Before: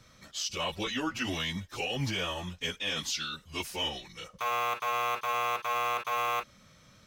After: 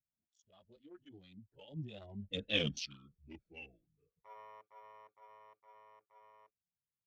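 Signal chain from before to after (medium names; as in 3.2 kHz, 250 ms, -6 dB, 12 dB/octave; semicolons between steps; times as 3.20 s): local Wiener filter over 41 samples; Doppler pass-by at 2.58 s, 40 m/s, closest 6.1 m; spectral contrast expander 1.5:1; trim +5.5 dB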